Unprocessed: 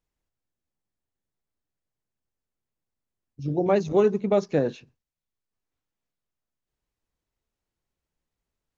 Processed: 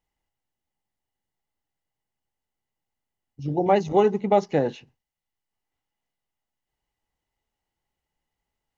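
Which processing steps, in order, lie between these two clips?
hollow resonant body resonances 830/2,000/2,900 Hz, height 12 dB, ringing for 25 ms

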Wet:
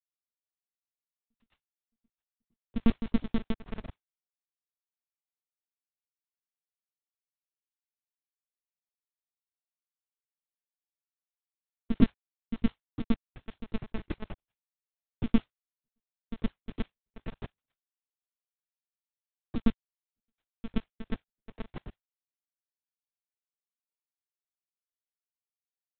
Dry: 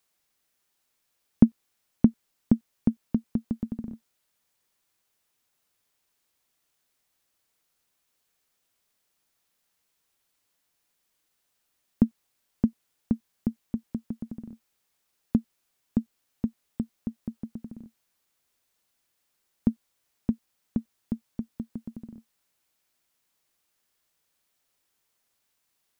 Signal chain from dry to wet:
hold until the input has moved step −26 dBFS
high-pass filter 91 Hz 12 dB per octave
noise gate −46 dBFS, range −44 dB
noise that follows the level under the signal 15 dB
gate pattern "xxxxx.xx.x.x.x.." 89 BPM −60 dB
backwards echo 113 ms −9.5 dB
linear-prediction vocoder at 8 kHz pitch kept
level +2.5 dB

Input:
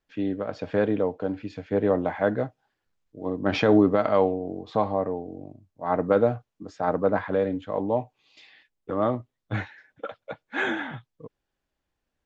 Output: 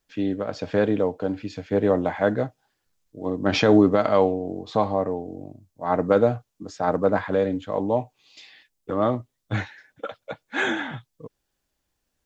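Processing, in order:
bass and treble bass +1 dB, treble +10 dB
level +2 dB

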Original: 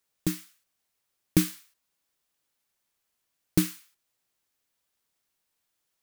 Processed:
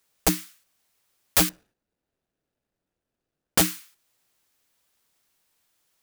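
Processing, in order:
0:01.49–0:03.58: running median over 41 samples
wrap-around overflow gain 19 dB
level +8 dB

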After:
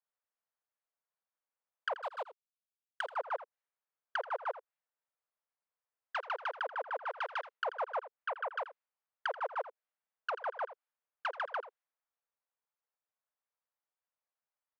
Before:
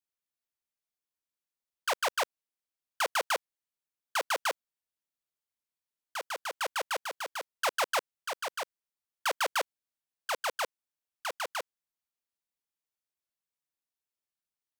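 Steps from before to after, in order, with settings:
treble cut that deepens with the level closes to 740 Hz, closed at −31 dBFS
0:07.96–0:08.55: low-pass filter 4,400 Hz → 1,900 Hz 12 dB per octave
low-pass that shuts in the quiet parts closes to 1,500 Hz, open at −32 dBFS
parametric band 1,300 Hz +5 dB 2.6 octaves
downward compressor 2.5 to 1, threshold −34 dBFS, peak gain reduction 6 dB
0:01.94–0:03.16: power curve on the samples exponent 1.4
linear-phase brick-wall high-pass 420 Hz
single-tap delay 83 ms −14.5 dB
wow of a warped record 45 rpm, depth 100 cents

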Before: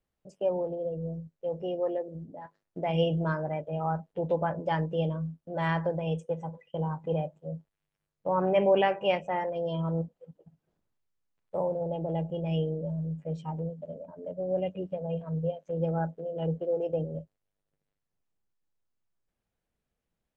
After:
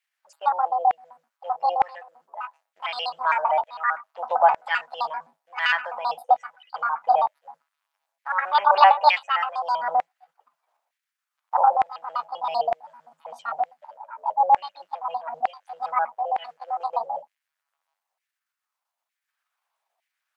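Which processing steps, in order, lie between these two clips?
pitch shifter gated in a rhythm +7 semitones, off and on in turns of 65 ms
low shelf with overshoot 470 Hz −11 dB, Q 1.5
auto-filter high-pass saw down 1.1 Hz 690–2,100 Hz
tape wow and flutter 20 cents
level +6.5 dB

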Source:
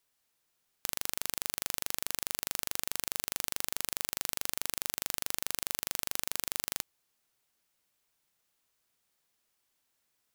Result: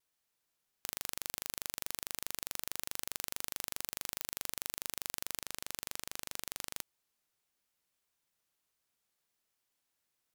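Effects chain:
pitch vibrato 1.5 Hz 49 cents
0:05.39–0:06.76: highs frequency-modulated by the lows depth 0.16 ms
level −5 dB

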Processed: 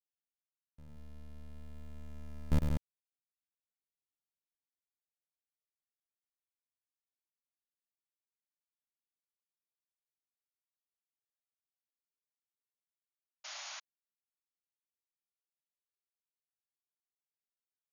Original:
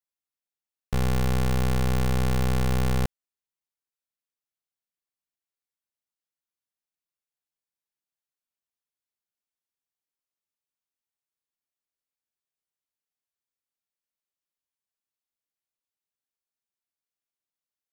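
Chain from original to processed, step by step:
source passing by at 0:04.10, 53 m/s, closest 13 metres
noise gate with hold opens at −38 dBFS
low-shelf EQ 340 Hz +10 dB
loudspeakers that aren't time-aligned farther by 35 metres −6 dB, 63 metres −5 dB
sound drawn into the spectrogram noise, 0:13.44–0:13.80, 570–7,000 Hz −52 dBFS
level +6.5 dB

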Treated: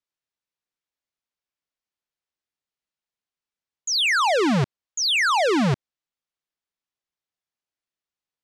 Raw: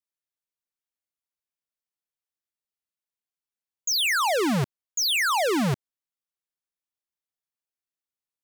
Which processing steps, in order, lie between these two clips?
low-pass filter 5,800 Hz 12 dB per octave
level +3.5 dB

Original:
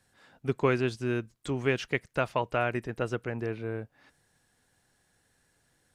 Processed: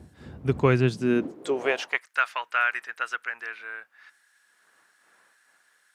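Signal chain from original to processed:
wind on the microphone 230 Hz −46 dBFS
high-pass filter sweep 80 Hz → 1,500 Hz, 0:00.59–0:02.18
level +3.5 dB

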